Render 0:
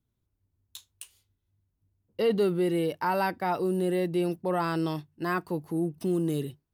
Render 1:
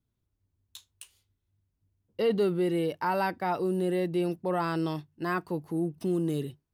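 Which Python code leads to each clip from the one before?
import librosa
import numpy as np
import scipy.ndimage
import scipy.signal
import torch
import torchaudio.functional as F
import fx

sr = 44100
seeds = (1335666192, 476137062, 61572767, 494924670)

y = fx.high_shelf(x, sr, hz=9400.0, db=-5.5)
y = F.gain(torch.from_numpy(y), -1.0).numpy()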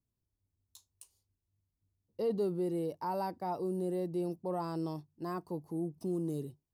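y = fx.band_shelf(x, sr, hz=2200.0, db=-12.5, octaves=1.7)
y = F.gain(torch.from_numpy(y), -6.5).numpy()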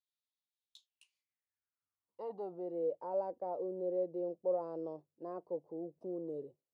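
y = fx.filter_sweep_bandpass(x, sr, from_hz=3700.0, to_hz=530.0, start_s=0.67, end_s=2.85, q=5.3)
y = F.gain(torch.from_numpy(y), 7.0).numpy()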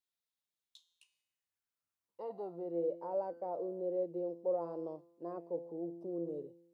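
y = fx.comb_fb(x, sr, f0_hz=170.0, decay_s=0.99, harmonics='all', damping=0.0, mix_pct=70)
y = F.gain(torch.from_numpy(y), 9.5).numpy()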